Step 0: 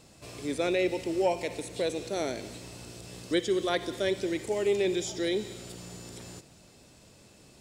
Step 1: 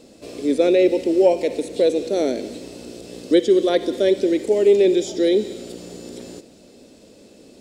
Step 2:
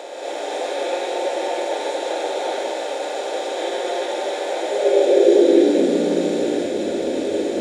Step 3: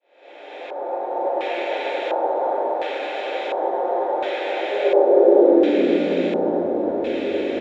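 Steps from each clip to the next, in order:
graphic EQ 125/250/500/1000/4000 Hz -8/+12/+11/-4/+4 dB; trim +1.5 dB
spectral levelling over time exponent 0.2; high-pass sweep 820 Hz -> 78 Hz, 4.51–6.65 s; gated-style reverb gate 320 ms rising, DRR -6.5 dB; trim -16.5 dB
fade-in on the opening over 1.57 s; delay 355 ms -6.5 dB; LFO low-pass square 0.71 Hz 940–2600 Hz; trim -2.5 dB

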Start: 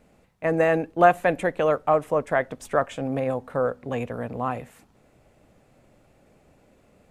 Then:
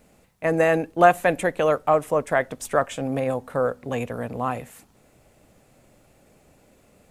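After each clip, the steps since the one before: treble shelf 5.1 kHz +10.5 dB; trim +1 dB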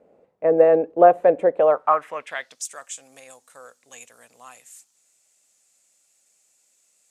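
band-pass sweep 500 Hz -> 7.2 kHz, 1.52–2.68 s; trim +7.5 dB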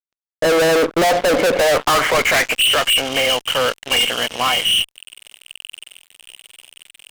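knee-point frequency compression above 2.1 kHz 4:1; gain riding within 5 dB 0.5 s; fuzz box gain 43 dB, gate -49 dBFS

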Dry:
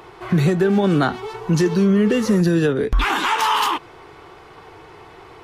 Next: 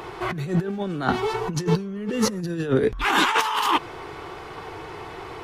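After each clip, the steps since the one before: compressor with a negative ratio -22 dBFS, ratio -0.5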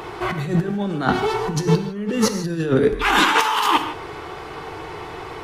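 gated-style reverb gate 180 ms flat, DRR 7.5 dB; trim +3 dB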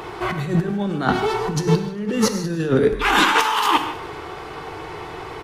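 feedback delay 100 ms, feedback 59%, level -18.5 dB

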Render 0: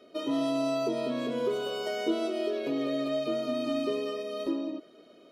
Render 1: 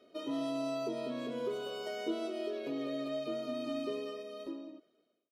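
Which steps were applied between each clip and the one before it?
fade out at the end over 1.34 s; trim -7 dB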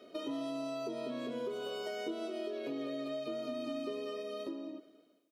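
high-pass 110 Hz; compression 3:1, threshold -46 dBFS, peak gain reduction 12 dB; feedback delay 198 ms, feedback 37%, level -21 dB; trim +7 dB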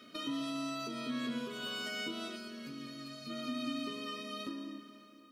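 time-frequency box 2.36–3.30 s, 250–4100 Hz -9 dB; high-order bell 540 Hz -15 dB; plate-style reverb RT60 4 s, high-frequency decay 0.85×, DRR 9 dB; trim +6.5 dB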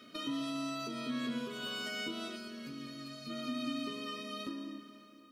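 bass shelf 81 Hz +5.5 dB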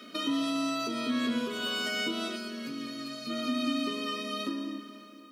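high-pass 180 Hz 24 dB/octave; trim +7.5 dB

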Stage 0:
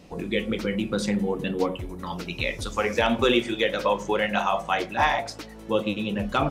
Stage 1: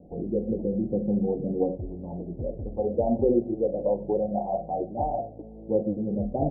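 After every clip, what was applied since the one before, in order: steep low-pass 760 Hz 72 dB/octave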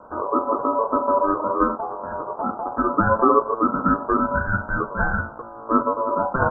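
ring modulator 780 Hz; trim +8.5 dB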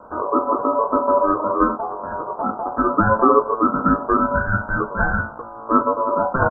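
doubling 19 ms -11.5 dB; trim +2 dB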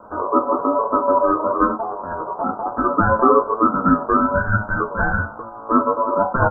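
flange 1.1 Hz, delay 8.8 ms, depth 4.2 ms, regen +48%; trim +4.5 dB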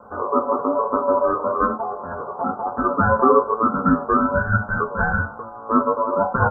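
comb of notches 320 Hz

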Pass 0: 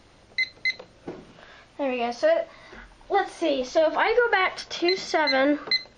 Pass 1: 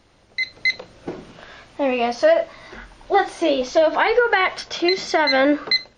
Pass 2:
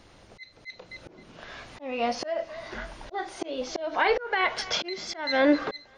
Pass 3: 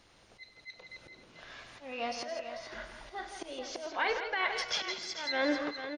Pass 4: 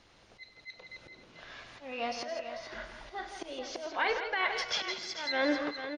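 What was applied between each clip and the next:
level rider gain up to 9 dB; trim -2.5 dB
thinning echo 263 ms, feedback 40%, high-pass 550 Hz, level -21 dB; slow attack 668 ms; trim +2.5 dB
tilt shelf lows -3.5 dB; on a send: multi-tap echo 100/165/442 ms -16/-8.5/-10 dB; on the sum: trim -8 dB
low-pass 6.8 kHz 12 dB/octave; trim +1 dB

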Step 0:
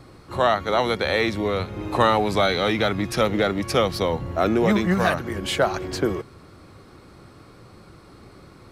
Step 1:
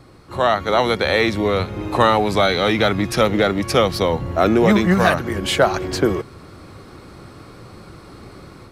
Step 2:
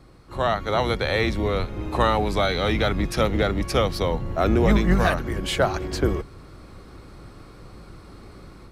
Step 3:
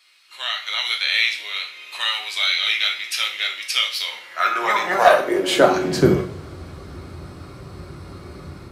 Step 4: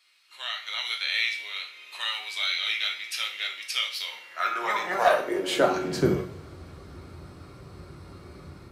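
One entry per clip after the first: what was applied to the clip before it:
level rider gain up to 7 dB
octave divider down 2 oct, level +2 dB; trim -6 dB
two-slope reverb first 0.42 s, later 4.2 s, from -28 dB, DRR 1.5 dB; high-pass sweep 2.7 kHz -> 81 Hz, 4.04–6.53 s; hard clipper -6 dBFS, distortion -30 dB; trim +3.5 dB
feedback comb 460 Hz, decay 0.69 s, mix 60%

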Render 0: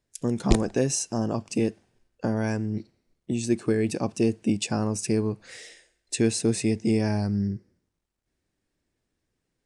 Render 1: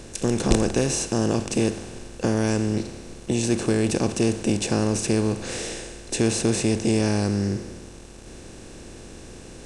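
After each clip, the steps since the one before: spectral levelling over time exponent 0.4; trim -2 dB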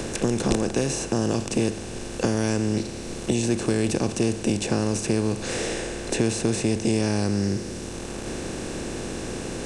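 three bands compressed up and down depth 70%; trim -1.5 dB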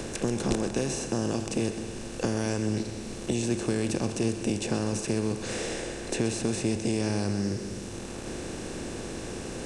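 two-band feedback delay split 370 Hz, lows 211 ms, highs 128 ms, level -11.5 dB; trim -5 dB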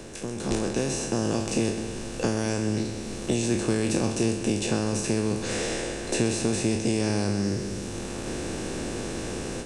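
spectral sustain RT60 0.54 s; level rider gain up to 10 dB; trim -7.5 dB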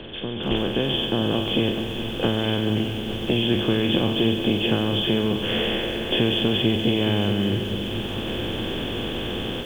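knee-point frequency compression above 2.5 kHz 4:1; bit-crushed delay 432 ms, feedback 80%, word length 7-bit, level -13 dB; trim +3 dB

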